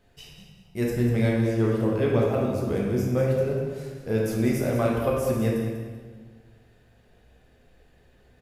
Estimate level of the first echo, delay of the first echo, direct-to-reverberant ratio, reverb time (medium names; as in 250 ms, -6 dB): -10.0 dB, 194 ms, -4.0 dB, 1.5 s